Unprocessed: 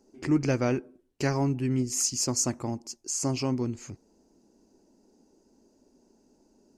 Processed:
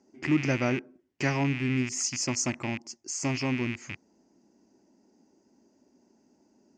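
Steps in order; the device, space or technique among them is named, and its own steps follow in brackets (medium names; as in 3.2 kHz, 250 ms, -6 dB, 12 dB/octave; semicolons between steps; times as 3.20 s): car door speaker with a rattle (rattle on loud lows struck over -41 dBFS, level -26 dBFS; cabinet simulation 100–6700 Hz, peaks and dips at 460 Hz -7 dB, 2 kHz +7 dB, 4 kHz -6 dB)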